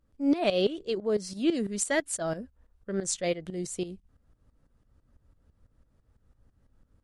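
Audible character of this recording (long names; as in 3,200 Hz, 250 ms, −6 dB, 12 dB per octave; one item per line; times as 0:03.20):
tremolo saw up 6 Hz, depth 80%
MP3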